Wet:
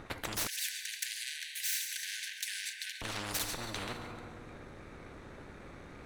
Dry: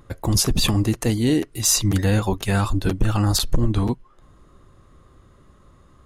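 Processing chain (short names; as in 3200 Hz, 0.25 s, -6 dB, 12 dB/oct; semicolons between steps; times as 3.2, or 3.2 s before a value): minimum comb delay 0.49 ms; LPF 2700 Hz 6 dB/oct; thin delay 0.138 s, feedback 44%, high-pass 2000 Hz, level -16 dB; FDN reverb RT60 1.2 s, low-frequency decay 1.2×, high-frequency decay 0.85×, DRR 11 dB; limiter -16.5 dBFS, peak gain reduction 9.5 dB; 0.47–3.02 brick-wall FIR high-pass 1500 Hz; spectral compressor 4:1; gain -1.5 dB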